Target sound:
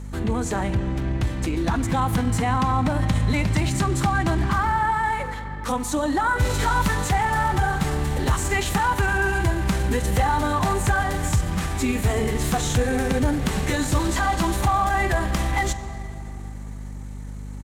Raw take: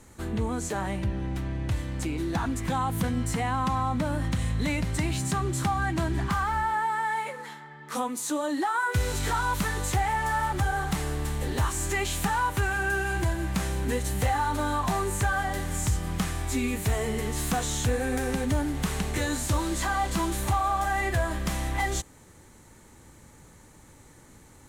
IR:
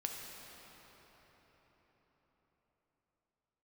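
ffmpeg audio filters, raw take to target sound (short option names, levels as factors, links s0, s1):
-filter_complex "[0:a]asplit=2[s0][s1];[1:a]atrim=start_sample=2205,lowpass=7800[s2];[s1][s2]afir=irnorm=-1:irlink=0,volume=0.501[s3];[s0][s3]amix=inputs=2:normalize=0,aeval=exprs='val(0)+0.0178*(sin(2*PI*50*n/s)+sin(2*PI*2*50*n/s)/2+sin(2*PI*3*50*n/s)/3+sin(2*PI*4*50*n/s)/4+sin(2*PI*5*50*n/s)/5)':c=same,atempo=1.4,volume=1.33"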